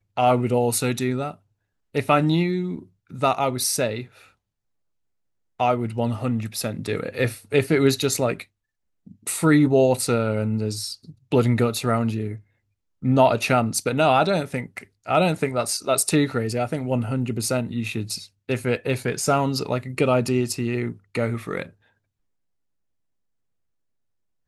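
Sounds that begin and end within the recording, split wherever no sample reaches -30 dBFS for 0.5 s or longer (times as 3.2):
1.95–4.03
5.6–8.42
9.27–12.36
13.04–21.63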